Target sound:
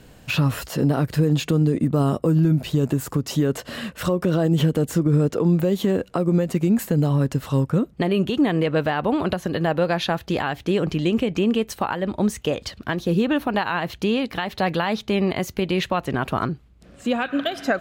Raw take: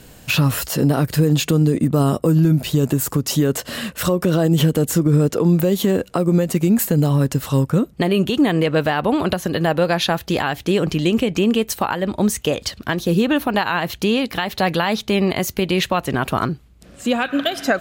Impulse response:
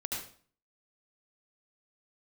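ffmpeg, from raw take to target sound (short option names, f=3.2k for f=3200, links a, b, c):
-af "aemphasis=mode=reproduction:type=cd,volume=-3.5dB"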